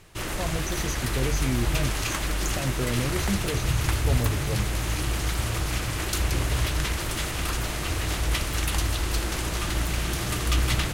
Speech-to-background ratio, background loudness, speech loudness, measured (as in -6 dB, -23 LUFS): -4.5 dB, -27.5 LUFS, -32.0 LUFS